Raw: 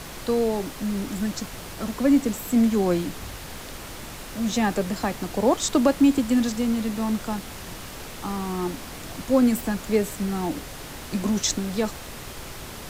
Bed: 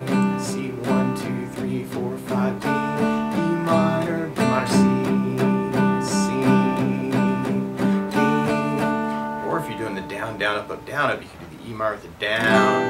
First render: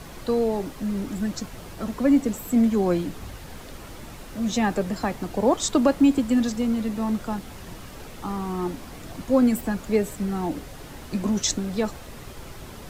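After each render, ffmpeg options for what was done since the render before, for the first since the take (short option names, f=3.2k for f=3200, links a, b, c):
-af "afftdn=nr=7:nf=-38"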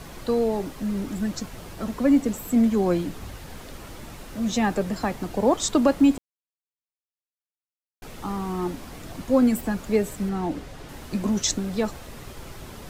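-filter_complex "[0:a]asettb=1/sr,asplit=3[a][b][c];[a]atrim=end=10.294[d];[b]atrim=start=10.29:end=10.89,asetpts=PTS-STARTPTS,afade=t=in:d=0.004:c=qsin,afade=t=out:st=0.596:d=0.004:c=qsin,highshelf=f=8.9k:g=-11[e];[c]atrim=start=10.886[f];[d][e]acrossfade=d=0.004:c1=hsin:c2=qsin[g];[g][f]acrossfade=d=0.004:c1=qsin:c2=hsin,asplit=3[h][i][j];[h]atrim=end=6.18,asetpts=PTS-STARTPTS,afade=t=out:st=6.176:d=0.004:c=hsin[k];[i]atrim=start=6.18:end=8.02,asetpts=PTS-STARTPTS,volume=0[l];[j]atrim=start=8.02,asetpts=PTS-STARTPTS,afade=t=in:d=0.004:c=hsin[m];[k][l][m]concat=n=3:v=0:a=1"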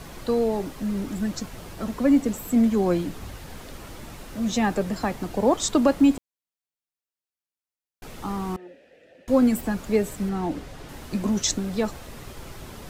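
-filter_complex "[0:a]asettb=1/sr,asplit=3[a][b][c];[a]atrim=end=8.564[d];[b]atrim=start=8.56:end=9.28,asetpts=PTS-STARTPTS,afade=t=in:d=0.004:c=qsin,afade=t=out:st=0.716:d=0.004:c=qsin,asplit=3[e][f][g];[e]bandpass=f=530:t=q:w=8,volume=0dB[h];[f]bandpass=f=1.84k:t=q:w=8,volume=-6dB[i];[g]bandpass=f=2.48k:t=q:w=8,volume=-9dB[j];[h][i][j]amix=inputs=3:normalize=0[k];[c]atrim=start=9.276[l];[d][k]acrossfade=d=0.004:c1=hsin:c2=qsin[m];[m][l]acrossfade=d=0.004:c1=qsin:c2=hsin"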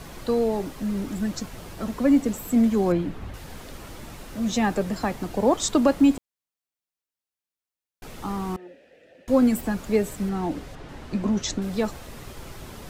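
-filter_complex "[0:a]asettb=1/sr,asplit=3[a][b][c];[a]atrim=end=2.924[d];[b]atrim=start=2.92:end=3.34,asetpts=PTS-STARTPTS,afade=t=in:d=0.004:c=qsin,afade=t=out:st=0.416:d=0.004:c=qsin,bass=f=250:g=2,treble=f=4k:g=-13[e];[c]atrim=start=3.336[f];[d][e]acrossfade=d=0.004:c1=hsin:c2=qsin[g];[g][f]acrossfade=d=0.004:c1=qsin:c2=hsin,asettb=1/sr,asplit=3[h][i][j];[h]atrim=end=10.754[k];[i]atrim=start=10.75:end=11.62,asetpts=PTS-STARTPTS,afade=t=in:d=0.004:c=qsin,afade=t=out:st=0.866:d=0.004:c=qsin,aemphasis=mode=reproduction:type=50fm[l];[j]atrim=start=11.616[m];[k][l]acrossfade=d=0.004:c1=hsin:c2=qsin[n];[n][m]acrossfade=d=0.004:c1=qsin:c2=hsin"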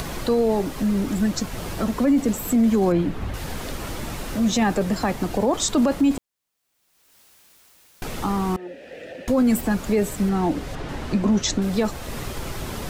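-filter_complex "[0:a]asplit=2[a][b];[b]acompressor=mode=upward:threshold=-22dB:ratio=2.5,volume=-2dB[c];[a][c]amix=inputs=2:normalize=0,alimiter=limit=-12dB:level=0:latency=1:release=13"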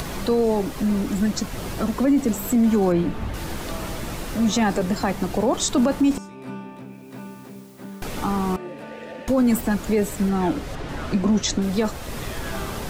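-filter_complex "[1:a]volume=-17.5dB[a];[0:a][a]amix=inputs=2:normalize=0"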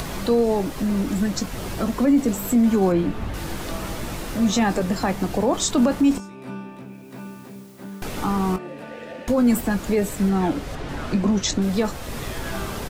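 -filter_complex "[0:a]asplit=2[a][b];[b]adelay=21,volume=-12dB[c];[a][c]amix=inputs=2:normalize=0"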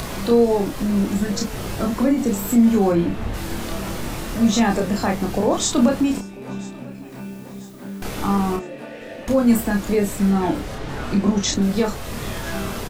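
-filter_complex "[0:a]asplit=2[a][b];[b]adelay=30,volume=-3dB[c];[a][c]amix=inputs=2:normalize=0,aecho=1:1:992|1984|2976|3968:0.0708|0.0389|0.0214|0.0118"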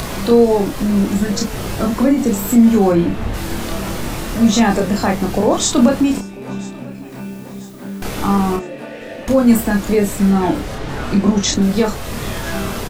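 -af "volume=4.5dB"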